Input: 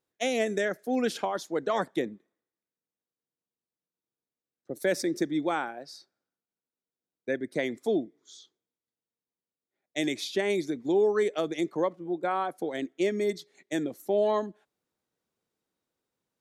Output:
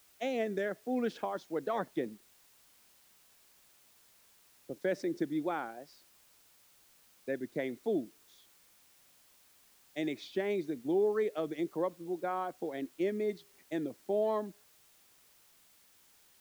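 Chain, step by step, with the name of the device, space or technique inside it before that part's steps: cassette deck with a dirty head (tape spacing loss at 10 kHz 21 dB; wow and flutter; white noise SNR 27 dB); gain -4.5 dB

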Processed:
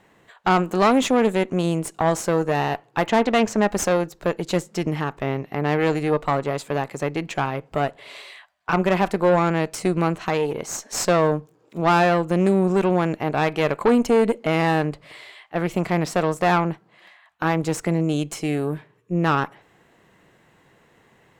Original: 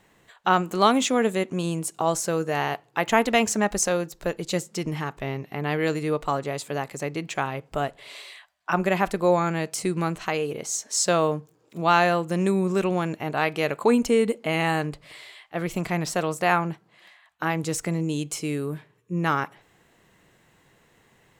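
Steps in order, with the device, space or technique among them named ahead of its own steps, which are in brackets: 3.09–3.58 air absorption 73 m; tube preamp driven hard (tube stage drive 19 dB, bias 0.65; low shelf 110 Hz -6.5 dB; high shelf 3300 Hz -9 dB); gain +8.5 dB

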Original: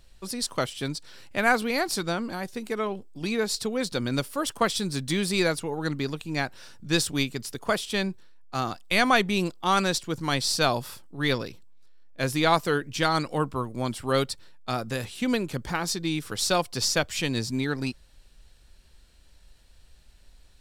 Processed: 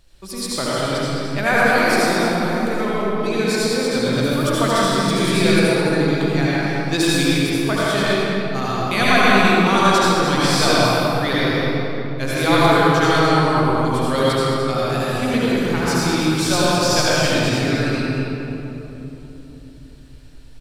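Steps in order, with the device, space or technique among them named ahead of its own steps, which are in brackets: cave (echo 0.215 s -8.5 dB; reverb RT60 3.4 s, pre-delay 66 ms, DRR -8 dB)

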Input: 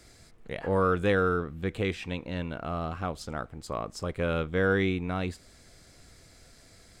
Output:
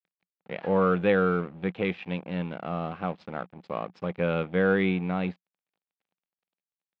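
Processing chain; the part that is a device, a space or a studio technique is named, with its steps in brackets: blown loudspeaker (crossover distortion -45 dBFS; speaker cabinet 160–3600 Hz, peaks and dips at 180 Hz +10 dB, 520 Hz +4 dB, 790 Hz +5 dB, 2400 Hz +4 dB)

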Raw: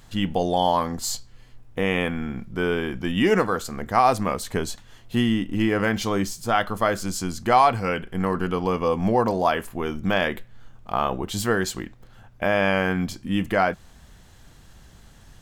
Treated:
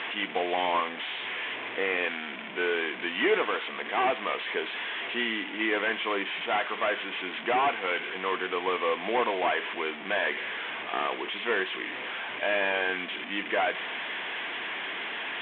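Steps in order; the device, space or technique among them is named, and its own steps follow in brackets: digital answering machine (BPF 330–3100 Hz; delta modulation 16 kbps, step -29.5 dBFS; speaker cabinet 470–3500 Hz, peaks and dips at 550 Hz -8 dB, 800 Hz -6 dB, 1300 Hz -7 dB, 2200 Hz +4 dB, 3400 Hz +9 dB); gain +3 dB

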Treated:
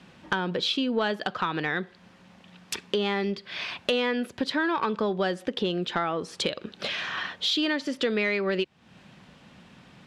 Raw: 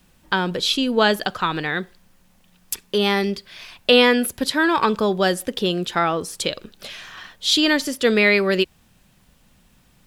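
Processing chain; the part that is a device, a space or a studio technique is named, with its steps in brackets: AM radio (BPF 130–3700 Hz; compressor 4:1, threshold -35 dBFS, peak gain reduction 20.5 dB; soft clip -20.5 dBFS, distortion -26 dB); gain +8.5 dB

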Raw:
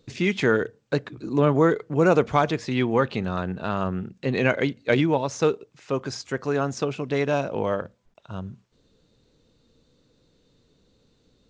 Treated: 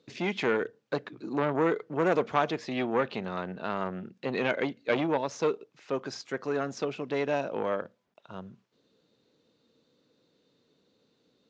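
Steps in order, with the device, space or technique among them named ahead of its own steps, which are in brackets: public-address speaker with an overloaded transformer (core saturation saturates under 950 Hz; BPF 210–5600 Hz); gain -3.5 dB

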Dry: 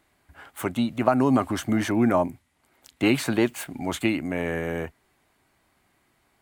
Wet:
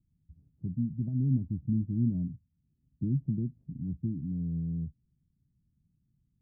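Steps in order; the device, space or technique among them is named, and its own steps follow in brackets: the neighbour's flat through the wall (LPF 180 Hz 24 dB/oct; bell 160 Hz +5.5 dB 0.75 oct)

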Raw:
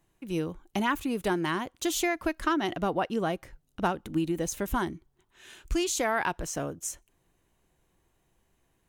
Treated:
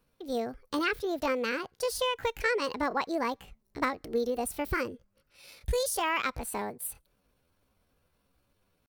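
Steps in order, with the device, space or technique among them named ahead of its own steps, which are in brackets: chipmunk voice (pitch shift +6.5 st); 0.85–2.16 high shelf 7100 Hz -5.5 dB; gain -1.5 dB

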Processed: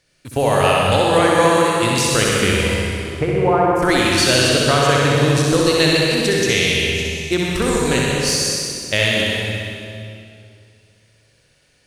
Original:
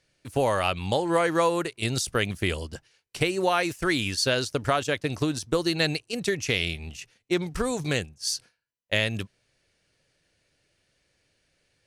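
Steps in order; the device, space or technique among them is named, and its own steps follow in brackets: 2.74–3.75 LPF 2600 Hz -> 1100 Hz 24 dB/oct; high shelf 6800 Hz +4 dB; tunnel (flutter echo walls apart 10.9 m, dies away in 0.98 s; reverb RT60 2.5 s, pre-delay 72 ms, DRR -1 dB); gain +5 dB

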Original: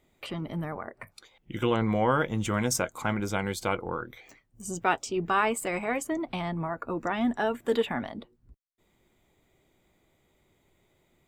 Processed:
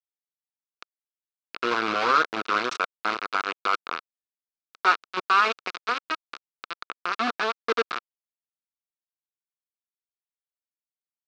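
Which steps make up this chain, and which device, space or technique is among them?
hand-held game console (bit-crush 4-bit; speaker cabinet 500–4100 Hz, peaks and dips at 590 Hz -10 dB, 840 Hz -9 dB, 1300 Hz +8 dB, 1900 Hz -8 dB, 3200 Hz -6 dB); gain +5 dB

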